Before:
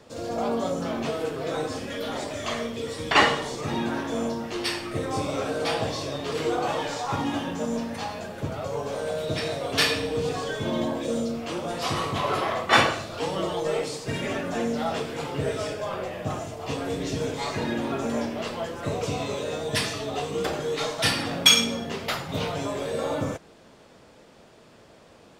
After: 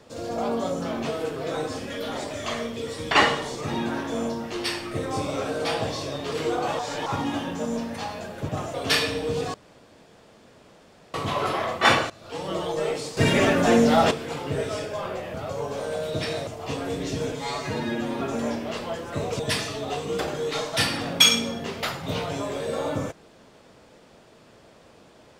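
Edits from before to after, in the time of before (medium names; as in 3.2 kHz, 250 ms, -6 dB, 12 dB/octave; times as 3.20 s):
6.79–7.06 s: reverse
8.49–9.62 s: swap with 16.22–16.47 s
10.42–12.02 s: room tone
12.98–13.49 s: fade in, from -19 dB
14.05–14.99 s: gain +9.5 dB
17.32–17.91 s: stretch 1.5×
19.10–19.65 s: delete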